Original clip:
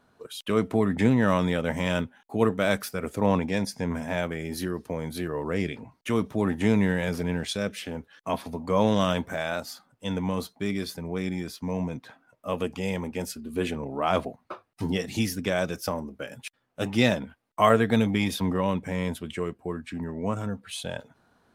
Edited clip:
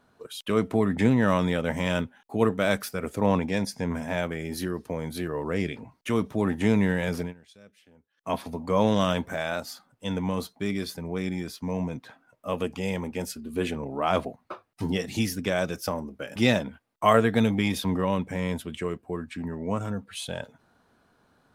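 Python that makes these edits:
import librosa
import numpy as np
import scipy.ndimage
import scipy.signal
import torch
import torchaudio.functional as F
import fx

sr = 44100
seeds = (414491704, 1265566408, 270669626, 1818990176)

y = fx.edit(x, sr, fx.fade_down_up(start_s=7.2, length_s=1.11, db=-23.5, fade_s=0.14),
    fx.cut(start_s=16.36, length_s=0.56), tone=tone)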